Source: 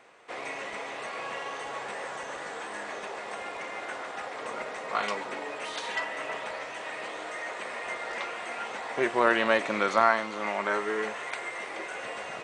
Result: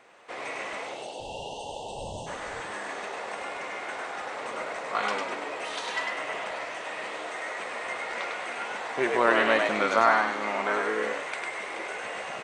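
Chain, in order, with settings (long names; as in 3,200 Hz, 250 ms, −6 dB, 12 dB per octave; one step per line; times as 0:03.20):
0:01.19–0:02.60: wind on the microphone 110 Hz −44 dBFS
0:00.84–0:02.27: time-frequency box erased 910–2,600 Hz
echo with shifted repeats 101 ms, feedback 38%, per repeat +67 Hz, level −3.5 dB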